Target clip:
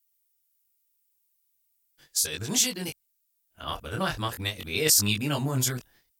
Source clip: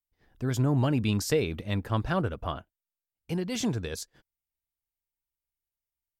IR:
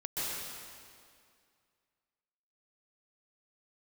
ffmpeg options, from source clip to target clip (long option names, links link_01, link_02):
-af "areverse,flanger=delay=19.5:depth=7.7:speed=0.4,crystalizer=i=9.5:c=0,volume=-1.5dB"